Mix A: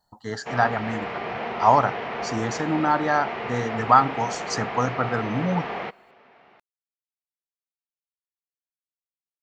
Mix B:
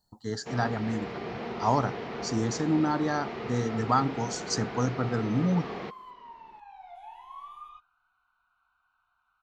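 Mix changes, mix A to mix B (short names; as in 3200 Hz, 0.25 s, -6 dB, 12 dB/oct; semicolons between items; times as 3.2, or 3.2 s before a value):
second sound: unmuted; reverb: on, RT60 0.65 s; master: add band shelf 1300 Hz -9.5 dB 2.8 oct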